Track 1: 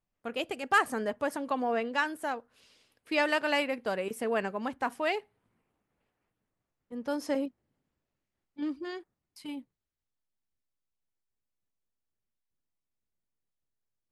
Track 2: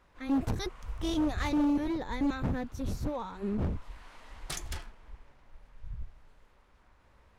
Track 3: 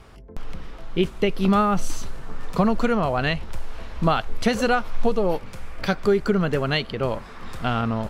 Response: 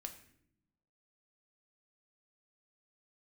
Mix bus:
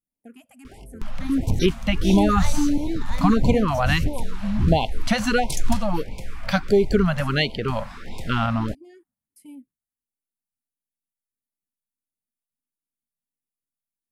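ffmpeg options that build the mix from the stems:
-filter_complex "[0:a]highshelf=frequency=9200:gain=12,acompressor=threshold=-34dB:ratio=20,equalizer=frequency=250:width_type=o:width=0.67:gain=12,equalizer=frequency=4000:width_type=o:width=0.67:gain=-12,equalizer=frequency=10000:width_type=o:width=0.67:gain=9,volume=-10.5dB[link_01];[1:a]bass=frequency=250:gain=9,treble=frequency=4000:gain=8,adelay=1000,volume=2dB[link_02];[2:a]adelay=650,volume=2dB[link_03];[link_01][link_02][link_03]amix=inputs=3:normalize=0,afftfilt=real='re*(1-between(b*sr/1024,340*pow(1500/340,0.5+0.5*sin(2*PI*1.5*pts/sr))/1.41,340*pow(1500/340,0.5+0.5*sin(2*PI*1.5*pts/sr))*1.41))':imag='im*(1-between(b*sr/1024,340*pow(1500/340,0.5+0.5*sin(2*PI*1.5*pts/sr))/1.41,340*pow(1500/340,0.5+0.5*sin(2*PI*1.5*pts/sr))*1.41))':win_size=1024:overlap=0.75"

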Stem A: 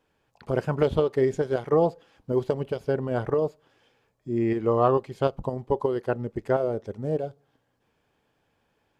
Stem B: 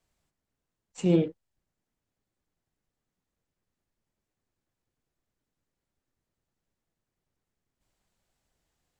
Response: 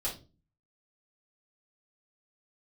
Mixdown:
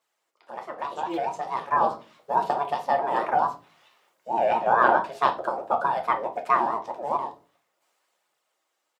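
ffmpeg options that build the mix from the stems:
-filter_complex "[0:a]flanger=delay=9:depth=7.1:regen=-60:speed=0.3:shape=triangular,aeval=exprs='val(0)*sin(2*PI*430*n/s+430*0.35/4.6*sin(2*PI*4.6*n/s))':channel_layout=same,volume=-4.5dB,asplit=3[link_01][link_02][link_03];[link_02]volume=-4.5dB[link_04];[1:a]aecho=1:1:6.2:0.81,aphaser=in_gain=1:out_gain=1:delay=4.5:decay=0.68:speed=1.2:type=triangular,volume=-3dB[link_05];[link_03]apad=whole_len=396880[link_06];[link_05][link_06]sidechaincompress=threshold=-51dB:ratio=5:attack=49:release=101[link_07];[2:a]atrim=start_sample=2205[link_08];[link_04][link_08]afir=irnorm=-1:irlink=0[link_09];[link_01][link_07][link_09]amix=inputs=3:normalize=0,highpass=570,dynaudnorm=framelen=200:gausssize=17:maxgain=14dB"

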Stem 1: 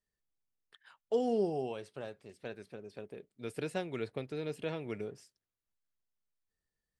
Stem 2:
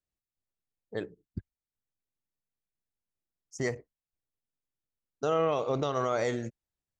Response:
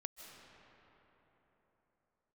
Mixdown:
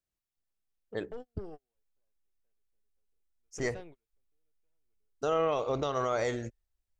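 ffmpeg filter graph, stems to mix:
-filter_complex "[0:a]acompressor=threshold=-38dB:ratio=2.5,highshelf=frequency=4600:gain=-8.5,aeval=exprs='(tanh(50.1*val(0)+0.3)-tanh(0.3))/50.1':channel_layout=same,volume=-2dB[link_01];[1:a]volume=-0.5dB,asplit=2[link_02][link_03];[link_03]apad=whole_len=308579[link_04];[link_01][link_04]sidechaingate=range=-46dB:threshold=-55dB:ratio=16:detection=peak[link_05];[link_05][link_02]amix=inputs=2:normalize=0,asubboost=boost=9.5:cutoff=51"

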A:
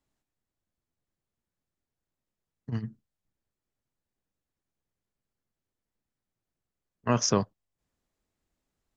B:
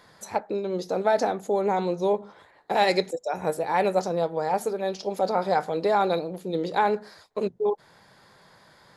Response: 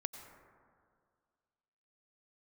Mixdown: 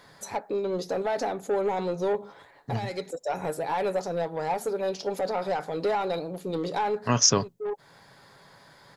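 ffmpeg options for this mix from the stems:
-filter_complex "[0:a]highshelf=frequency=3400:gain=11,volume=0dB,asplit=2[link_01][link_02];[1:a]alimiter=limit=-16.5dB:level=0:latency=1:release=281,asoftclip=type=tanh:threshold=-22dB,volume=1dB[link_03];[link_02]apad=whole_len=395537[link_04];[link_03][link_04]sidechaincompress=threshold=-38dB:ratio=4:attack=40:release=390[link_05];[link_01][link_05]amix=inputs=2:normalize=0,aecho=1:1:7.2:0.3"

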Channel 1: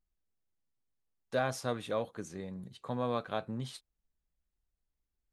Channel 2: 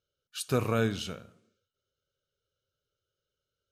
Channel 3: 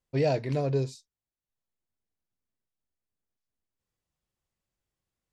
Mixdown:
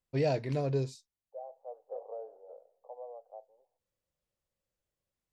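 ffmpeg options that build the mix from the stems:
ffmpeg -i stem1.wav -i stem2.wav -i stem3.wav -filter_complex "[0:a]volume=-4dB,afade=type=in:start_time=1.17:duration=0.73:silence=0.237137,afade=type=out:start_time=2.85:duration=0.31:silence=0.446684[link_01];[1:a]adelay=1400,volume=-3dB[link_02];[2:a]volume=-3.5dB[link_03];[link_01][link_02]amix=inputs=2:normalize=0,asuperpass=centerf=640:order=8:qfactor=1.7,acompressor=threshold=-38dB:ratio=6,volume=0dB[link_04];[link_03][link_04]amix=inputs=2:normalize=0" out.wav

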